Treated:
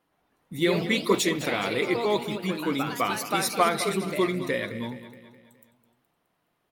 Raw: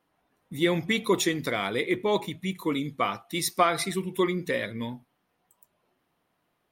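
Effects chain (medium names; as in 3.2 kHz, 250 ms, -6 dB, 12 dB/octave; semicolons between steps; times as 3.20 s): ever faster or slower copies 122 ms, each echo +2 st, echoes 3, each echo -6 dB; feedback delay 210 ms, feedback 51%, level -13.5 dB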